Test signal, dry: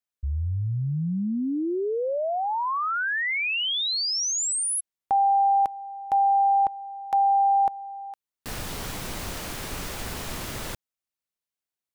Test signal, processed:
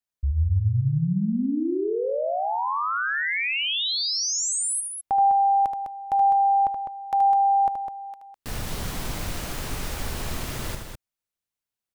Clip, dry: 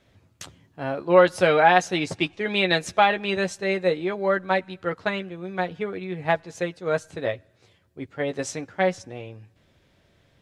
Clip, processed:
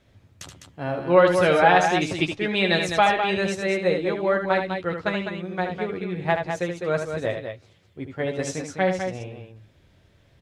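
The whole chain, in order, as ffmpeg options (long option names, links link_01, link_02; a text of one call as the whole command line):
ffmpeg -i in.wav -af "lowshelf=frequency=140:gain=7,aecho=1:1:75.8|204.1:0.447|0.447,volume=-1dB" out.wav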